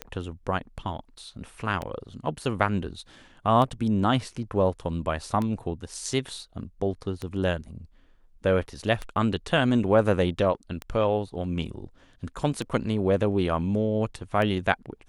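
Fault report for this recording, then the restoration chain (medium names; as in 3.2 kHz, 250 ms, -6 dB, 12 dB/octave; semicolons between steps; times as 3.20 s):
tick 33 1/3 rpm -17 dBFS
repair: de-click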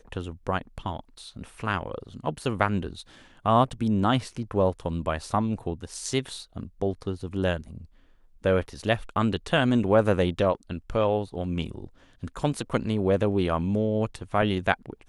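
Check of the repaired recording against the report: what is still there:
nothing left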